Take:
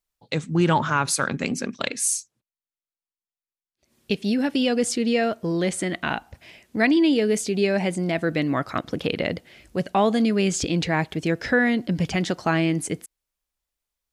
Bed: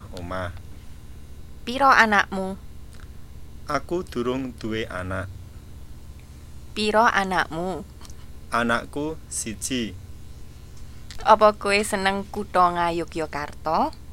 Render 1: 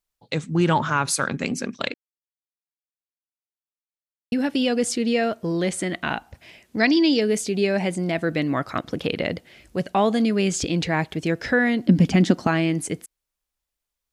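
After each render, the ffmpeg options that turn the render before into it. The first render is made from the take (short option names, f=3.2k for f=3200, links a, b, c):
-filter_complex "[0:a]asettb=1/sr,asplit=3[a][b][c];[a]atrim=end=6.784[d];[b]atrim=start=6.78:end=7.21,asetpts=PTS-STARTPTS,afade=t=in:d=0.004:c=qsin,afade=t=out:st=0.426:d=0.004:c=qsin,lowpass=f=5.5k:t=q:w=7.4[e];[c]atrim=start=7.206[f];[d][e]acrossfade=d=0.004:c1=hsin:c2=qsin[g];[g][f]acrossfade=d=0.004:c1=qsin:c2=hsin,asettb=1/sr,asplit=3[h][i][j];[h]atrim=end=11.864[k];[i]atrim=start=11.86:end=12.47,asetpts=PTS-STARTPTS,afade=t=in:d=0.004:c=qsin,afade=t=out:st=0.606:d=0.004:c=qsin,equalizer=f=240:w=1.5:g=14[l];[j]atrim=start=12.466[m];[k][l]acrossfade=d=0.004:c1=hsin:c2=qsin[n];[n][m]acrossfade=d=0.004:c1=qsin:c2=hsin,asplit=3[o][p][q];[o]atrim=end=1.94,asetpts=PTS-STARTPTS,afade=t=out:st=1.936:d=0.004:c=hsin[r];[p]atrim=start=1.94:end=4.32,asetpts=PTS-STARTPTS,volume=0[s];[q]atrim=start=4.32,asetpts=PTS-STARTPTS,afade=t=in:d=0.004:c=hsin[t];[r][s][t]concat=n=3:v=0:a=1"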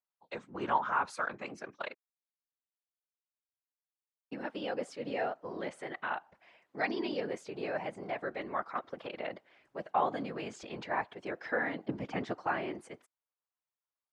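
-af "afftfilt=real='hypot(re,im)*cos(2*PI*random(0))':imag='hypot(re,im)*sin(2*PI*random(1))':win_size=512:overlap=0.75,bandpass=f=1k:t=q:w=1.3:csg=0"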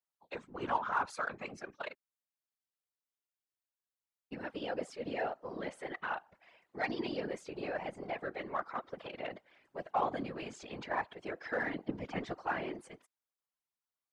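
-filter_complex "[0:a]asplit=2[a][b];[b]asoftclip=type=tanh:threshold=-33dB,volume=-8.5dB[c];[a][c]amix=inputs=2:normalize=0,afftfilt=real='hypot(re,im)*cos(2*PI*random(0))':imag='hypot(re,im)*sin(2*PI*random(1))':win_size=512:overlap=0.75"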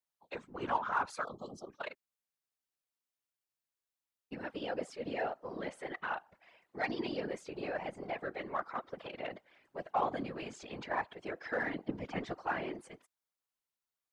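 -filter_complex "[0:a]asplit=3[a][b][c];[a]afade=t=out:st=1.23:d=0.02[d];[b]asuperstop=centerf=2000:order=20:qfactor=1.1,afade=t=in:st=1.23:d=0.02,afade=t=out:st=1.69:d=0.02[e];[c]afade=t=in:st=1.69:d=0.02[f];[d][e][f]amix=inputs=3:normalize=0"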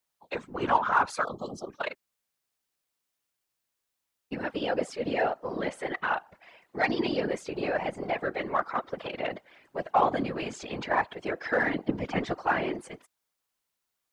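-af "volume=9dB"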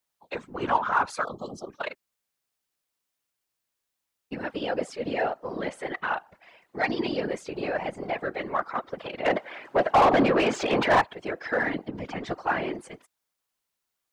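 -filter_complex "[0:a]asplit=3[a][b][c];[a]afade=t=out:st=9.25:d=0.02[d];[b]asplit=2[e][f];[f]highpass=f=720:p=1,volume=28dB,asoftclip=type=tanh:threshold=-9dB[g];[e][g]amix=inputs=2:normalize=0,lowpass=f=1.1k:p=1,volume=-6dB,afade=t=in:st=9.25:d=0.02,afade=t=out:st=11:d=0.02[h];[c]afade=t=in:st=11:d=0.02[i];[d][h][i]amix=inputs=3:normalize=0,asettb=1/sr,asplit=3[j][k][l];[j]atrim=end=11.774[m];[k]atrim=start=11.77:end=12.27,asetpts=PTS-STARTPTS,afade=t=in:d=0.004:c=qsin,afade=t=out:st=0.496:d=0.004:c=qsin,acompressor=threshold=-30dB:ratio=3:attack=3.2:release=140:knee=1:detection=peak[n];[l]atrim=start=12.266[o];[m][n]acrossfade=d=0.004:c1=hsin:c2=qsin[p];[p][o]acrossfade=d=0.004:c1=qsin:c2=hsin"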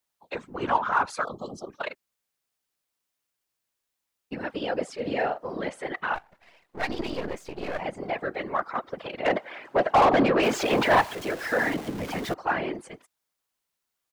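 -filter_complex "[0:a]asplit=3[a][b][c];[a]afade=t=out:st=4.98:d=0.02[d];[b]asplit=2[e][f];[f]adelay=43,volume=-8dB[g];[e][g]amix=inputs=2:normalize=0,afade=t=in:st=4.98:d=0.02,afade=t=out:st=5.51:d=0.02[h];[c]afade=t=in:st=5.51:d=0.02[i];[d][h][i]amix=inputs=3:normalize=0,asplit=3[j][k][l];[j]afade=t=out:st=6.14:d=0.02[m];[k]aeval=exprs='if(lt(val(0),0),0.251*val(0),val(0))':c=same,afade=t=in:st=6.14:d=0.02,afade=t=out:st=7.79:d=0.02[n];[l]afade=t=in:st=7.79:d=0.02[o];[m][n][o]amix=inputs=3:normalize=0,asettb=1/sr,asplit=3[p][q][r];[p]atrim=end=10.434[s];[q]atrim=start=10.43:end=12.34,asetpts=PTS-STARTPTS,afade=t=in:d=0.004:c=qsin,afade=t=out:st=1.906:d=0.004:c=qsin,aeval=exprs='val(0)+0.5*0.02*sgn(val(0))':c=same[t];[r]atrim=start=12.336[u];[s][t]acrossfade=d=0.004:c1=hsin:c2=qsin[v];[v][u]acrossfade=d=0.004:c1=qsin:c2=hsin"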